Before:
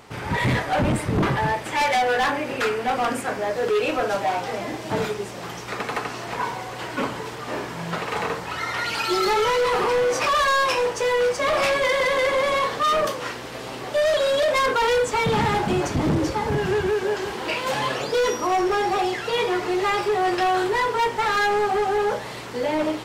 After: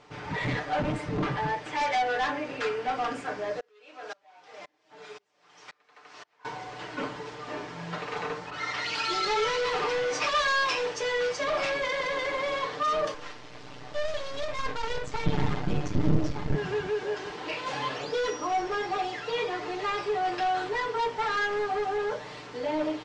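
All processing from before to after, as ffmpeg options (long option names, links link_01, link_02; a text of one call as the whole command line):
ffmpeg -i in.wav -filter_complex "[0:a]asettb=1/sr,asplit=3[link_01][link_02][link_03];[link_01]atrim=end=3.604[link_04];[link_02]atrim=start=3.6:end=6.45,asetpts=PTS-STARTPTS,afade=type=in:duration=0.004:curve=qsin,afade=type=out:start_time=2.846:duration=0.004:curve=qsin,highpass=frequency=830:poles=1,aeval=exprs='val(0)*pow(10,-36*if(lt(mod(-1.9*n/s,1),2*abs(-1.9)/1000),1-mod(-1.9*n/s,1)/(2*abs(-1.9)/1000),(mod(-1.9*n/s,1)-2*abs(-1.9)/1000)/(1-2*abs(-1.9)/1000))/20)':channel_layout=same[link_05];[link_03]atrim=start=6.446[link_06];[link_04][link_05]acrossfade=duration=0.004:curve1=hsin:curve2=qsin[link_07];[link_07][link_06]acrossfade=duration=0.004:curve1=qsin:curve2=hsin,asettb=1/sr,asplit=3[link_08][link_09][link_10];[link_08]atrim=end=8.504[link_11];[link_09]atrim=start=8.5:end=11.44,asetpts=PTS-STARTPTS,afade=type=in:duration=0.004:curve=qsin,afade=type=out:start_time=2.936:duration=0.004:curve=qsin,lowpass=10000,adynamicequalizer=threshold=0.0282:dfrequency=1700:dqfactor=0.7:tfrequency=1700:tqfactor=0.7:attack=5:release=100:ratio=0.375:range=2.5:mode=boostabove:tftype=highshelf[link_12];[link_10]atrim=start=11.436[link_13];[link_11][link_12]acrossfade=duration=0.004:curve1=hsin:curve2=qsin[link_14];[link_14][link_13]acrossfade=duration=0.004:curve1=qsin:curve2=hsin,asettb=1/sr,asplit=3[link_15][link_16][link_17];[link_15]atrim=end=13.144[link_18];[link_16]atrim=start=13.14:end=16.55,asetpts=PTS-STARTPTS,afade=type=in:duration=0.004:curve=qsin,afade=type=out:start_time=3.406:duration=0.004:curve=qsin,asubboost=boost=9:cutoff=200,aeval=exprs='max(val(0),0)':channel_layout=same[link_19];[link_17]atrim=start=16.546[link_20];[link_18][link_19]acrossfade=duration=0.004:curve1=hsin:curve2=qsin[link_21];[link_21][link_20]acrossfade=duration=0.004:curve1=qsin:curve2=hsin,lowpass=frequency=6600:width=0.5412,lowpass=frequency=6600:width=1.3066,equalizer=frequency=120:width_type=o:width=0.89:gain=-3.5,aecho=1:1:6.7:0.54,volume=-8.5dB" out.wav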